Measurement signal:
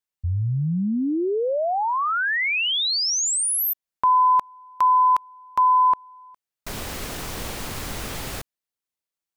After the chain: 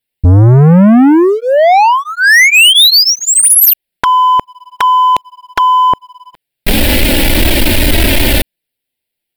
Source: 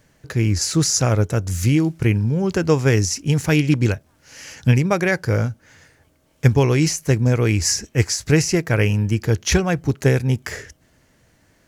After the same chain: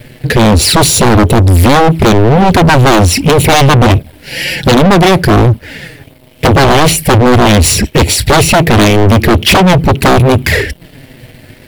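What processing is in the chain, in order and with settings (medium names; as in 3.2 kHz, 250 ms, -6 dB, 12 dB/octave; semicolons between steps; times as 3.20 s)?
touch-sensitive flanger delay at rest 8.4 ms, full sweep at -16.5 dBFS; in parallel at -8.5 dB: hard clipper -19 dBFS; on the sum: static phaser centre 2.8 kHz, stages 4; sine folder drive 16 dB, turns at -3.5 dBFS; waveshaping leveller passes 2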